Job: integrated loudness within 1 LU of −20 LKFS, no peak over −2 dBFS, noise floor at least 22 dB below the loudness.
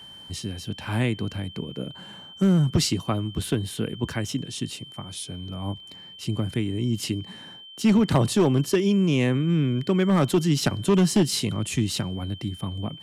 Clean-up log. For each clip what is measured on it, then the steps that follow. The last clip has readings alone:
share of clipped samples 0.7%; peaks flattened at −13.5 dBFS; interfering tone 3,100 Hz; level of the tone −42 dBFS; integrated loudness −24.5 LKFS; sample peak −13.5 dBFS; target loudness −20.0 LKFS
→ clipped peaks rebuilt −13.5 dBFS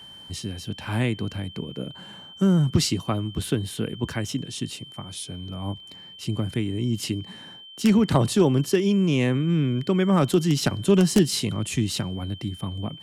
share of clipped samples 0.0%; interfering tone 3,100 Hz; level of the tone −42 dBFS
→ notch filter 3,100 Hz, Q 30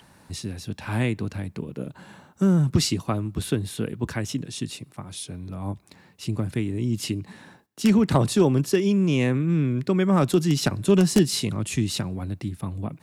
interfering tone none found; integrated loudness −24.0 LKFS; sample peak −4.5 dBFS; target loudness −20.0 LKFS
→ level +4 dB
brickwall limiter −2 dBFS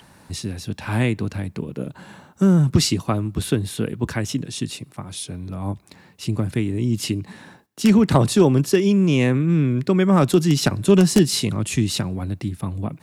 integrated loudness −20.5 LKFS; sample peak −2.0 dBFS; background noise floor −51 dBFS

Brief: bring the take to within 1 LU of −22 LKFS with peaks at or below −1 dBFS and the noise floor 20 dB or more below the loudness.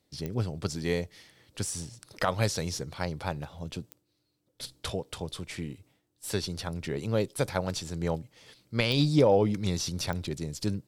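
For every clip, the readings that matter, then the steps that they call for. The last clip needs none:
number of clicks 4; integrated loudness −31.0 LKFS; sample peak −11.5 dBFS; target loudness −22.0 LKFS
→ click removal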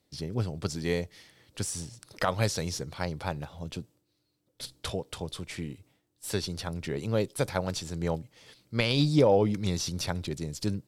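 number of clicks 0; integrated loudness −31.0 LKFS; sample peak −11.5 dBFS; target loudness −22.0 LKFS
→ level +9 dB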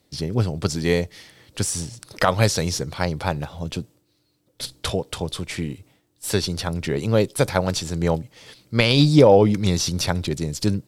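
integrated loudness −22.0 LKFS; sample peak −2.5 dBFS; background noise floor −67 dBFS

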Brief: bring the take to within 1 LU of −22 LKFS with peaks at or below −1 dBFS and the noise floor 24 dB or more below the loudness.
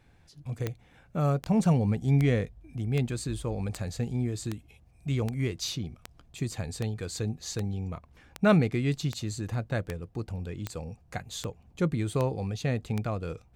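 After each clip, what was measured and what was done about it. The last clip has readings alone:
number of clicks 17; integrated loudness −30.5 LKFS; sample peak −11.0 dBFS; target loudness −22.0 LKFS
→ click removal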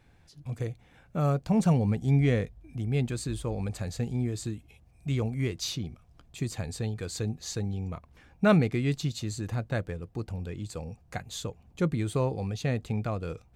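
number of clicks 0; integrated loudness −30.5 LKFS; sample peak −11.0 dBFS; target loudness −22.0 LKFS
→ level +8.5 dB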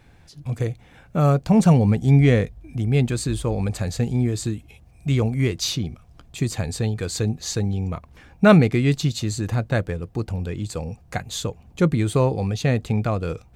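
integrated loudness −22.0 LKFS; sample peak −2.5 dBFS; background noise floor −51 dBFS

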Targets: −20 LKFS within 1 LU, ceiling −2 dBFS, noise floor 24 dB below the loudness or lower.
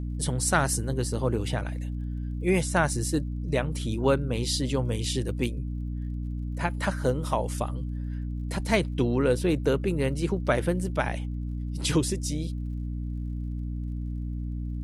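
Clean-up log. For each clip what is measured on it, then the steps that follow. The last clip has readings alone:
crackle rate 44 per second; mains hum 60 Hz; hum harmonics up to 300 Hz; level of the hum −29 dBFS; integrated loudness −28.5 LKFS; sample peak −8.0 dBFS; target loudness −20.0 LKFS
→ click removal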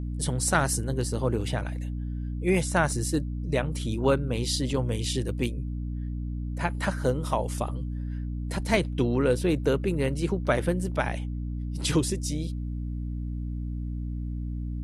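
crackle rate 0.13 per second; mains hum 60 Hz; hum harmonics up to 300 Hz; level of the hum −29 dBFS
→ hum removal 60 Hz, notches 5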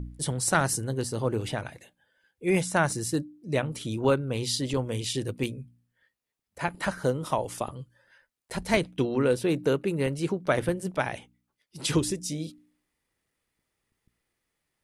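mains hum none found; integrated loudness −28.5 LKFS; sample peak −8.5 dBFS; target loudness −20.0 LKFS
→ level +8.5 dB
brickwall limiter −2 dBFS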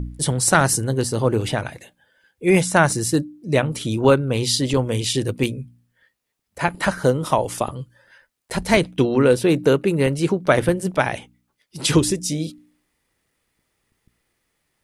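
integrated loudness −20.0 LKFS; sample peak −2.0 dBFS; background noise floor −73 dBFS

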